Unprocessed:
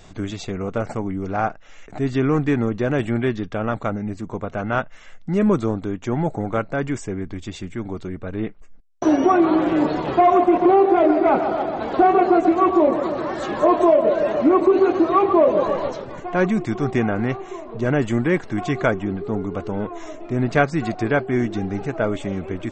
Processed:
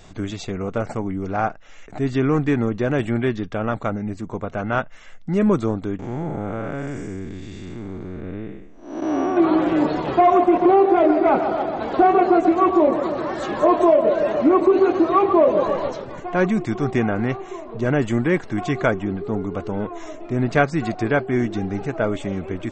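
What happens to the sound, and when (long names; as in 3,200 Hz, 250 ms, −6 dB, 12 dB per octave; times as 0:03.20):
0:05.99–0:09.37: spectrum smeared in time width 300 ms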